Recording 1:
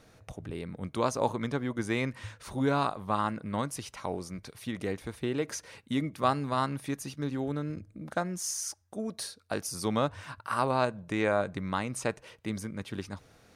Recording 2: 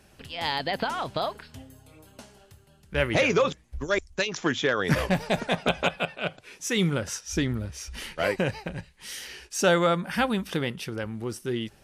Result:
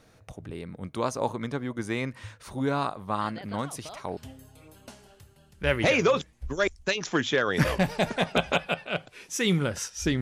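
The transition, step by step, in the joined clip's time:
recording 1
3.21 add recording 2 from 0.52 s 0.96 s -15 dB
4.17 switch to recording 2 from 1.48 s

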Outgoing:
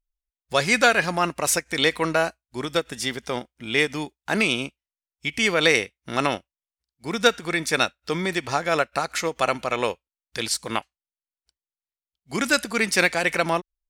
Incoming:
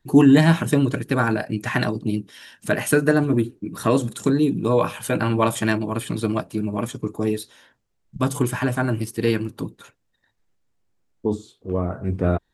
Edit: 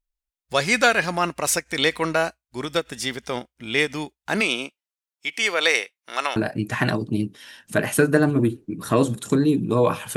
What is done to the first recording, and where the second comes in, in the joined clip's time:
outgoing
4.4–6.36 HPF 240 Hz -> 760 Hz
6.36 switch to incoming from 1.3 s

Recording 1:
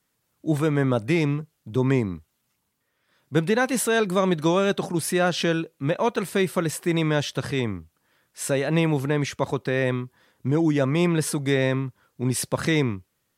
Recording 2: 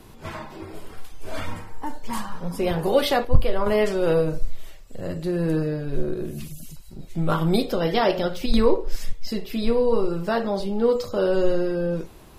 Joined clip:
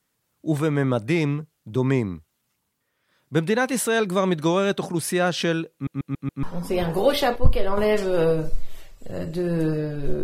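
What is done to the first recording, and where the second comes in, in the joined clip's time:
recording 1
5.73 stutter in place 0.14 s, 5 plays
6.43 switch to recording 2 from 2.32 s

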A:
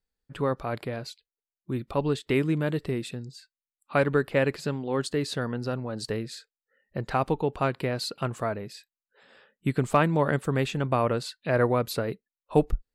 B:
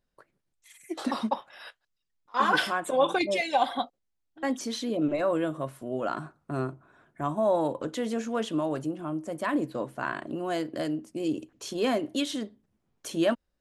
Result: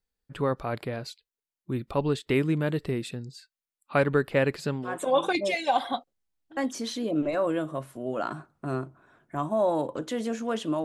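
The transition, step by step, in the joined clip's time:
A
4.9 switch to B from 2.76 s, crossfade 0.16 s

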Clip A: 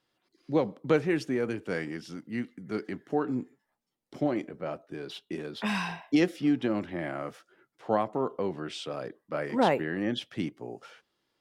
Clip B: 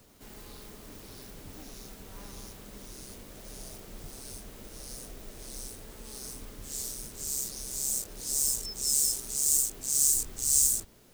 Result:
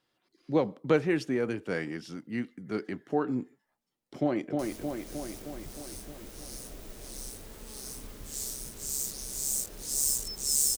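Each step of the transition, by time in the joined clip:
clip A
4.19–4.59 echo throw 0.31 s, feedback 65%, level -3.5 dB
4.59 switch to clip B from 2.97 s

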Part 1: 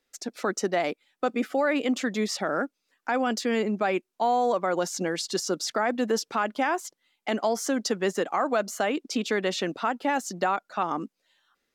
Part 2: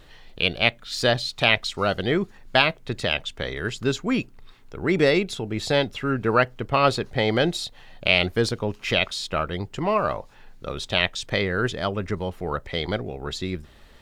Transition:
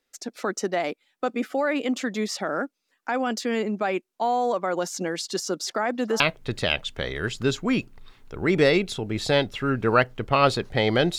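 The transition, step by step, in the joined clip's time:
part 1
5.31–6.2 delay with a stepping band-pass 0.335 s, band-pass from 900 Hz, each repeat 1.4 oct, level -12 dB
6.2 switch to part 2 from 2.61 s

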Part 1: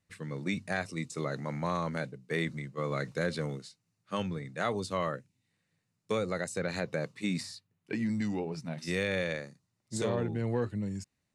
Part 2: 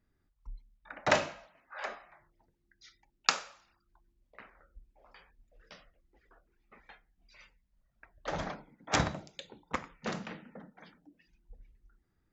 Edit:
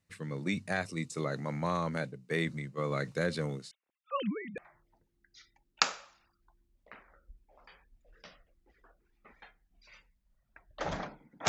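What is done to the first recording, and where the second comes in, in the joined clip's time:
part 1
3.71–4.58 sine-wave speech
4.58 switch to part 2 from 2.05 s

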